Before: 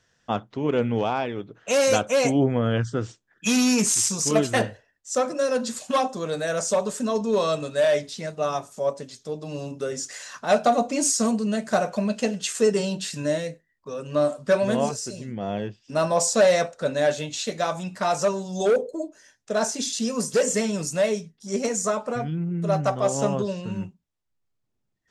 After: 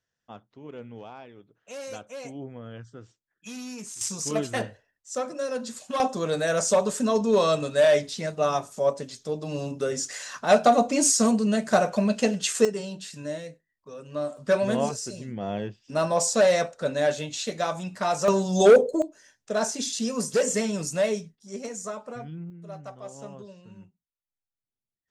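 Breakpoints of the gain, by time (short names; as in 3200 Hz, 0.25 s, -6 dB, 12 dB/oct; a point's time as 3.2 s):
-18 dB
from 4.01 s -6.5 dB
from 6 s +1.5 dB
from 12.65 s -8.5 dB
from 14.37 s -2 dB
from 18.28 s +6 dB
from 19.02 s -2 dB
from 21.35 s -10 dB
from 22.5 s -17.5 dB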